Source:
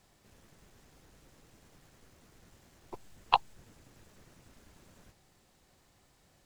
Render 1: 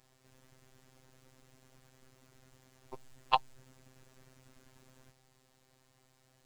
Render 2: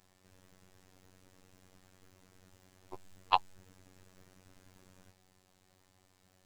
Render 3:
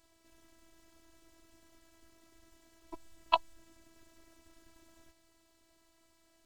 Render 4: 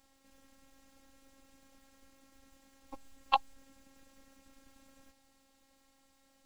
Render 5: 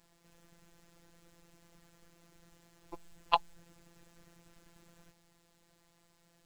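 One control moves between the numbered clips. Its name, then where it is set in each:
robot voice, frequency: 130 Hz, 93 Hz, 330 Hz, 270 Hz, 170 Hz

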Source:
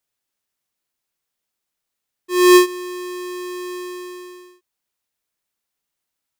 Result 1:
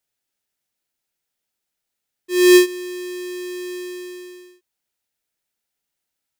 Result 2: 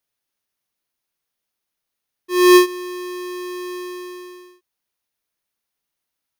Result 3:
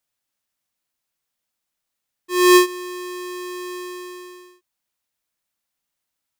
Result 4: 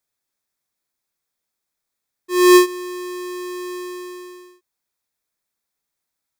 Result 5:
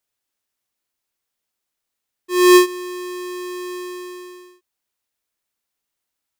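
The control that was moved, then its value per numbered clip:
band-stop, frequency: 1.1 kHz, 7.6 kHz, 400 Hz, 2.9 kHz, 160 Hz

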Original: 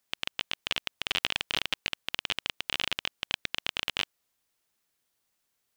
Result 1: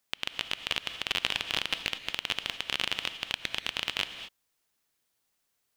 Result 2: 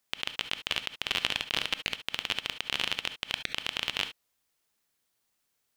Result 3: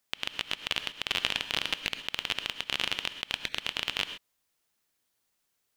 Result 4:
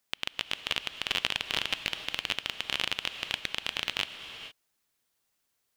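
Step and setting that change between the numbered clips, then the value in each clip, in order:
gated-style reverb, gate: 260 ms, 90 ms, 150 ms, 490 ms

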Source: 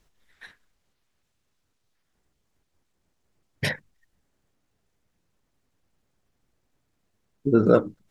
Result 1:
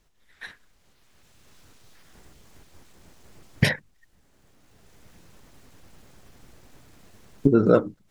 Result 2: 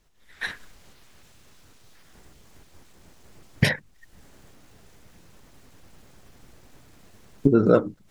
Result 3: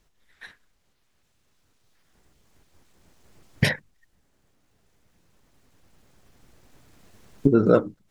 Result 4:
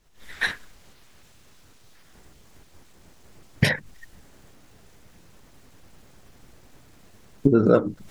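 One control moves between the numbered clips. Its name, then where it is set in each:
recorder AGC, rising by: 14 dB/s, 35 dB/s, 5.1 dB/s, 88 dB/s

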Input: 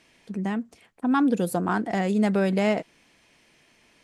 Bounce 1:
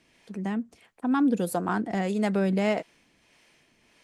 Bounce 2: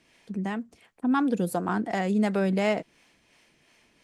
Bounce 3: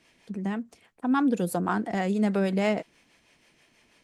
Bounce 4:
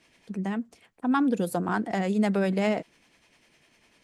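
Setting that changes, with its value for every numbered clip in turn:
harmonic tremolo, rate: 1.6 Hz, 2.8 Hz, 6.2 Hz, 10 Hz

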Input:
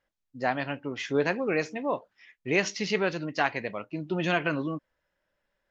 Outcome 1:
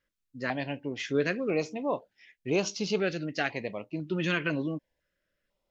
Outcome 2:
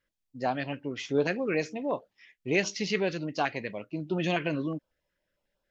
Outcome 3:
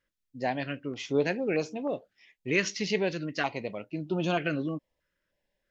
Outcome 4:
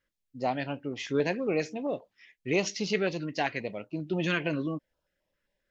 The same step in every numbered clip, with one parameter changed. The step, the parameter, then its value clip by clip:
step-sequenced notch, rate: 2 Hz, 11 Hz, 3.2 Hz, 7.5 Hz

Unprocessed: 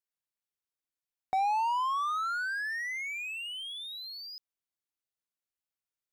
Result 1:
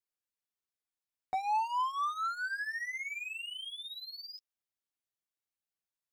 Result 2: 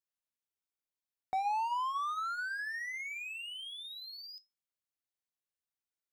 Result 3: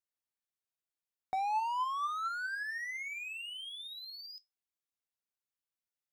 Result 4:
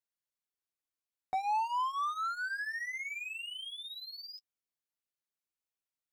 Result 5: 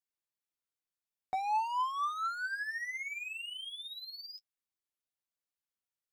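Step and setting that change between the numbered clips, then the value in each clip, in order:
flange, regen: +4%, -77%, +74%, -19%, +29%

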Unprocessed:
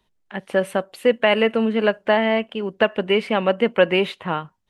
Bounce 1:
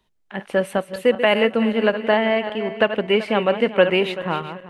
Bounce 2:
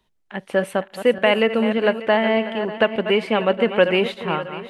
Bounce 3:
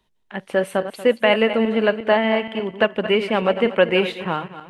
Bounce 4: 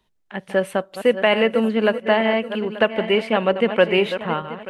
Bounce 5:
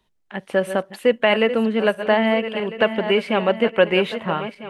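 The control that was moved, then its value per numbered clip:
backward echo that repeats, time: 192 ms, 296 ms, 118 ms, 442 ms, 650 ms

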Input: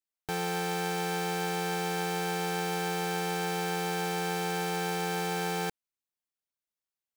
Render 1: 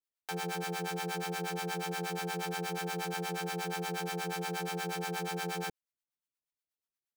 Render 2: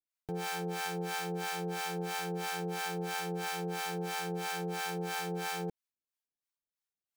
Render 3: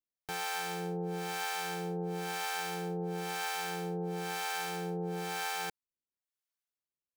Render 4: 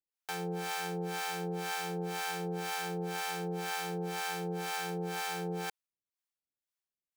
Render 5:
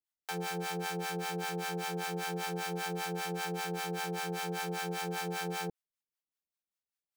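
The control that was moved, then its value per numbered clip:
harmonic tremolo, rate: 8.4 Hz, 3 Hz, 1 Hz, 2 Hz, 5.1 Hz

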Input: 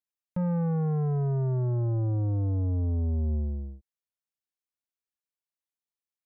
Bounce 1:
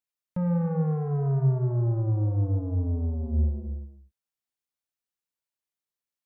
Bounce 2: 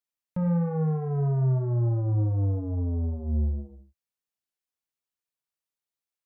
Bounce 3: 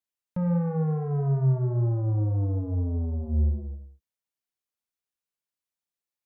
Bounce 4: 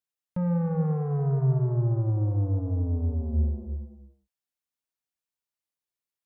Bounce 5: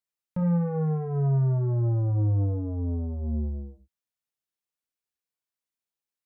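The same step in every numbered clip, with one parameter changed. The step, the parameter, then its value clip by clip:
gated-style reverb, gate: 320 ms, 140 ms, 210 ms, 480 ms, 80 ms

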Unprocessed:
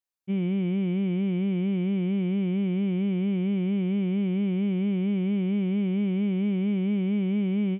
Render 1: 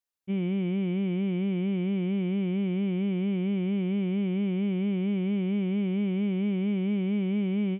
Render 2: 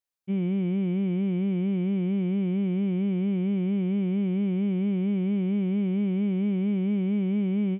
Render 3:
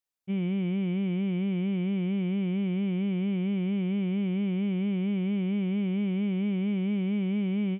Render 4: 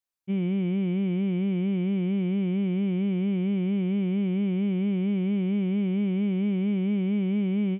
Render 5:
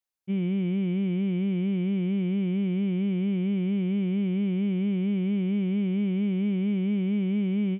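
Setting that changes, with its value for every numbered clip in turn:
dynamic bell, frequency: 110 Hz, 3.1 kHz, 310 Hz, 8.7 kHz, 790 Hz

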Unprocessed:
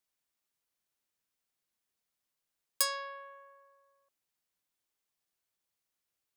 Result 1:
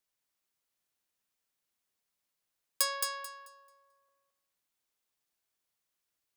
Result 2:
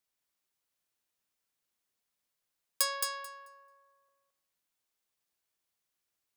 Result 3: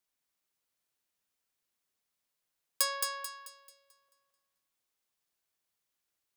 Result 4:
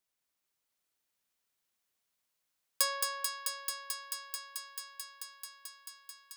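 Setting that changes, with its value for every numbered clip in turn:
thinning echo, feedback: 23%, 15%, 39%, 88%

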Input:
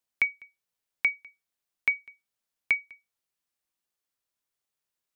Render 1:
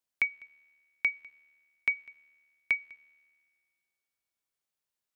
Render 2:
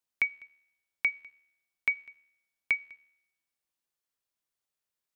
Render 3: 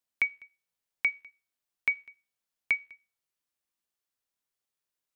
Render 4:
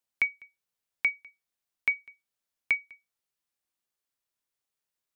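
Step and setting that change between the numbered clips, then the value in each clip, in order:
feedback comb, decay: 2 s, 0.86 s, 0.39 s, 0.16 s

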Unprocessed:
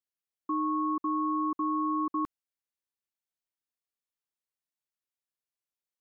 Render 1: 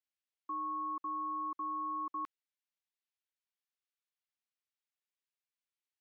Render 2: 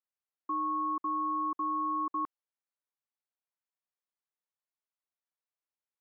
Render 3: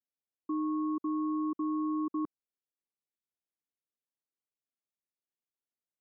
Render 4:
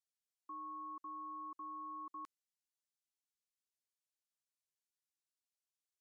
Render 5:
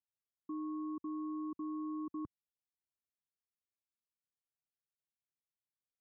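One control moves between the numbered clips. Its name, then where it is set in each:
band-pass filter, frequency: 2.6 kHz, 950 Hz, 300 Hz, 6.7 kHz, 100 Hz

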